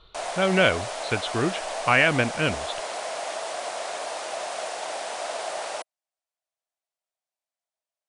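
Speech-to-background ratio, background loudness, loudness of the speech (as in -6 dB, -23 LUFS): 8.0 dB, -31.5 LUFS, -23.5 LUFS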